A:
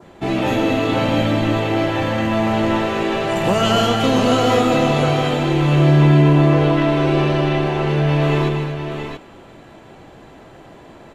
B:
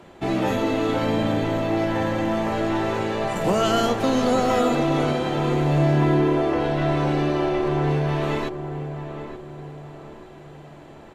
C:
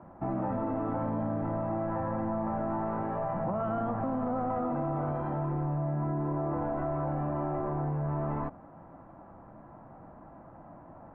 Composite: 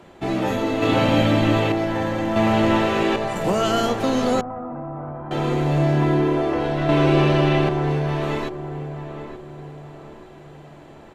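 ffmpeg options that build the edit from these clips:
-filter_complex "[0:a]asplit=3[s0][s1][s2];[1:a]asplit=5[s3][s4][s5][s6][s7];[s3]atrim=end=0.822[s8];[s0]atrim=start=0.818:end=1.722[s9];[s4]atrim=start=1.718:end=2.362[s10];[s1]atrim=start=2.358:end=3.162[s11];[s5]atrim=start=3.158:end=4.412[s12];[2:a]atrim=start=4.408:end=5.312[s13];[s6]atrim=start=5.308:end=6.892[s14];[s2]atrim=start=6.888:end=7.692[s15];[s7]atrim=start=7.688[s16];[s8][s9]acrossfade=d=0.004:c1=hsin:c2=hsin[s17];[s17][s10]acrossfade=d=0.004:c1=hsin:c2=hsin[s18];[s18][s11]acrossfade=d=0.004:c1=hsin:c2=hsin[s19];[s19][s12]acrossfade=d=0.004:c1=hsin:c2=hsin[s20];[s20][s13]acrossfade=d=0.004:c1=hsin:c2=hsin[s21];[s21][s14]acrossfade=d=0.004:c1=hsin:c2=hsin[s22];[s22][s15]acrossfade=d=0.004:c1=hsin:c2=hsin[s23];[s23][s16]acrossfade=d=0.004:c1=hsin:c2=hsin"

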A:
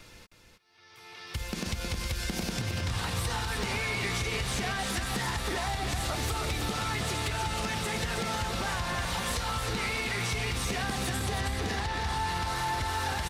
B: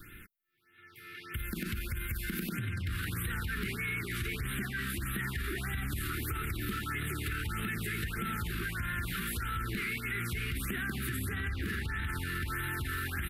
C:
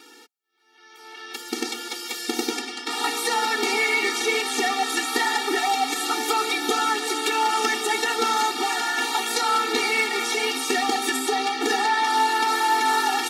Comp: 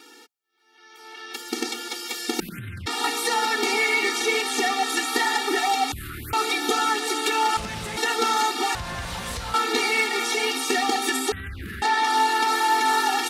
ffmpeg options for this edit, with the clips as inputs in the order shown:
-filter_complex "[1:a]asplit=3[s0][s1][s2];[0:a]asplit=2[s3][s4];[2:a]asplit=6[s5][s6][s7][s8][s9][s10];[s5]atrim=end=2.402[s11];[s0]atrim=start=2.398:end=2.862[s12];[s6]atrim=start=2.858:end=5.922[s13];[s1]atrim=start=5.918:end=6.332[s14];[s7]atrim=start=6.328:end=7.572[s15];[s3]atrim=start=7.568:end=7.972[s16];[s8]atrim=start=7.968:end=8.752[s17];[s4]atrim=start=8.748:end=9.542[s18];[s9]atrim=start=9.538:end=11.322[s19];[s2]atrim=start=11.318:end=11.822[s20];[s10]atrim=start=11.818[s21];[s11][s12]acrossfade=d=0.004:c1=hsin:c2=hsin[s22];[s22][s13]acrossfade=d=0.004:c1=hsin:c2=hsin[s23];[s23][s14]acrossfade=d=0.004:c1=hsin:c2=hsin[s24];[s24][s15]acrossfade=d=0.004:c1=hsin:c2=hsin[s25];[s25][s16]acrossfade=d=0.004:c1=hsin:c2=hsin[s26];[s26][s17]acrossfade=d=0.004:c1=hsin:c2=hsin[s27];[s27][s18]acrossfade=d=0.004:c1=hsin:c2=hsin[s28];[s28][s19]acrossfade=d=0.004:c1=hsin:c2=hsin[s29];[s29][s20]acrossfade=d=0.004:c1=hsin:c2=hsin[s30];[s30][s21]acrossfade=d=0.004:c1=hsin:c2=hsin"

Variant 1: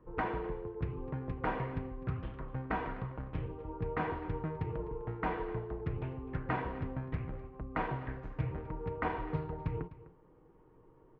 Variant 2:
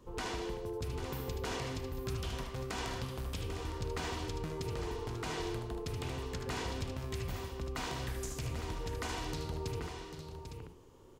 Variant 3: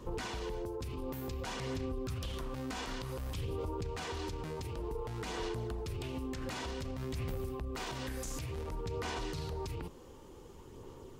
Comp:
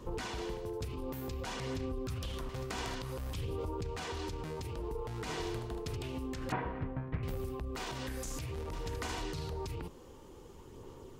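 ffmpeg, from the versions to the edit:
-filter_complex "[1:a]asplit=4[s0][s1][s2][s3];[2:a]asplit=6[s4][s5][s6][s7][s8][s9];[s4]atrim=end=0.382[s10];[s0]atrim=start=0.378:end=0.852[s11];[s5]atrim=start=0.848:end=2.492[s12];[s1]atrim=start=2.488:end=2.952[s13];[s6]atrim=start=2.948:end=5.282[s14];[s2]atrim=start=5.278:end=5.962[s15];[s7]atrim=start=5.958:end=6.522[s16];[0:a]atrim=start=6.518:end=7.232[s17];[s8]atrim=start=7.228:end=8.732[s18];[s3]atrim=start=8.728:end=9.222[s19];[s9]atrim=start=9.218[s20];[s10][s11]acrossfade=d=0.004:c1=hsin:c2=hsin[s21];[s21][s12]acrossfade=d=0.004:c1=hsin:c2=hsin[s22];[s22][s13]acrossfade=d=0.004:c1=hsin:c2=hsin[s23];[s23][s14]acrossfade=d=0.004:c1=hsin:c2=hsin[s24];[s24][s15]acrossfade=d=0.004:c1=hsin:c2=hsin[s25];[s25][s16]acrossfade=d=0.004:c1=hsin:c2=hsin[s26];[s26][s17]acrossfade=d=0.004:c1=hsin:c2=hsin[s27];[s27][s18]acrossfade=d=0.004:c1=hsin:c2=hsin[s28];[s28][s19]acrossfade=d=0.004:c1=hsin:c2=hsin[s29];[s29][s20]acrossfade=d=0.004:c1=hsin:c2=hsin"

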